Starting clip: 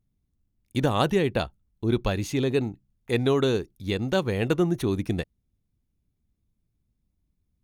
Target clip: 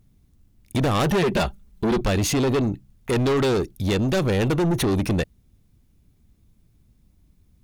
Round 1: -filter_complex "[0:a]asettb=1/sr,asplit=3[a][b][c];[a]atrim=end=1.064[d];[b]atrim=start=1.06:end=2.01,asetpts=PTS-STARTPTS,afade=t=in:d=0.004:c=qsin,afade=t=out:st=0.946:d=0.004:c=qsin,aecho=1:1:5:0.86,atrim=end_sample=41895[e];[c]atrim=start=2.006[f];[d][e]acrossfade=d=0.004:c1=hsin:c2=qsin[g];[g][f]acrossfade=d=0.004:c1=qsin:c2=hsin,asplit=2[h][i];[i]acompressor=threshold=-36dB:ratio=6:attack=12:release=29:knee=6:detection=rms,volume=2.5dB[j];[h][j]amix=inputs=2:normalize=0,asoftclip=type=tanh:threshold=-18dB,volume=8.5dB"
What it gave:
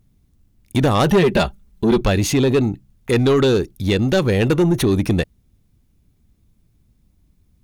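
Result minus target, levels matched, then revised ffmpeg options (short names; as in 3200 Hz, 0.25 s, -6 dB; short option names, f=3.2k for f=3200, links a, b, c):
soft clip: distortion -6 dB
-filter_complex "[0:a]asettb=1/sr,asplit=3[a][b][c];[a]atrim=end=1.064[d];[b]atrim=start=1.06:end=2.01,asetpts=PTS-STARTPTS,afade=t=in:d=0.004:c=qsin,afade=t=out:st=0.946:d=0.004:c=qsin,aecho=1:1:5:0.86,atrim=end_sample=41895[e];[c]atrim=start=2.006[f];[d][e]acrossfade=d=0.004:c1=hsin:c2=qsin[g];[g][f]acrossfade=d=0.004:c1=qsin:c2=hsin,asplit=2[h][i];[i]acompressor=threshold=-36dB:ratio=6:attack=12:release=29:knee=6:detection=rms,volume=2.5dB[j];[h][j]amix=inputs=2:normalize=0,asoftclip=type=tanh:threshold=-26.5dB,volume=8.5dB"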